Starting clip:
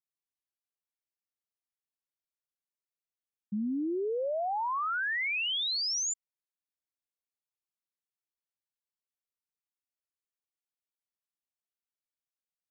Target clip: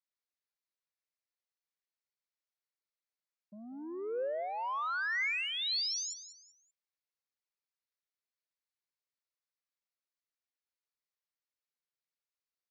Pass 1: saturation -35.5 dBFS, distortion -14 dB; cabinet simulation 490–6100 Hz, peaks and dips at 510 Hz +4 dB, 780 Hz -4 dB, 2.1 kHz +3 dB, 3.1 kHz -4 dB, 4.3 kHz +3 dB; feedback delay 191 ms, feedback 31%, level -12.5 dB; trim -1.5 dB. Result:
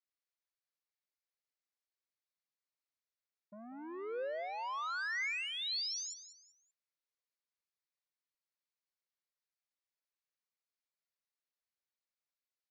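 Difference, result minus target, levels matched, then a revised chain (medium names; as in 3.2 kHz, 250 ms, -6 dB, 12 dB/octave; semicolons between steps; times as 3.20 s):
saturation: distortion +9 dB
saturation -28.5 dBFS, distortion -23 dB; cabinet simulation 490–6100 Hz, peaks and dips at 510 Hz +4 dB, 780 Hz -4 dB, 2.1 kHz +3 dB, 3.1 kHz -4 dB, 4.3 kHz +3 dB; feedback delay 191 ms, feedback 31%, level -12.5 dB; trim -1.5 dB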